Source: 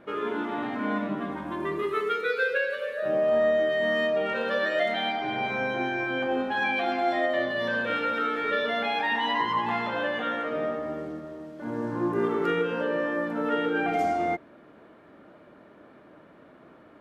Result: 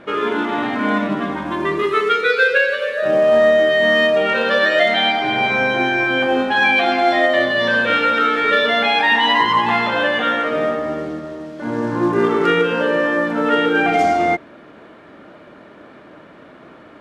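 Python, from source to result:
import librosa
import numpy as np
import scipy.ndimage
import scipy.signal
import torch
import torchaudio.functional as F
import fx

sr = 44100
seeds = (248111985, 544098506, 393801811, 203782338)

p1 = fx.high_shelf(x, sr, hz=2200.0, db=9.0)
p2 = fx.quant_float(p1, sr, bits=2)
p3 = p1 + F.gain(torch.from_numpy(p2), -8.0).numpy()
p4 = fx.air_absorb(p3, sr, metres=64.0)
y = F.gain(torch.from_numpy(p4), 6.5).numpy()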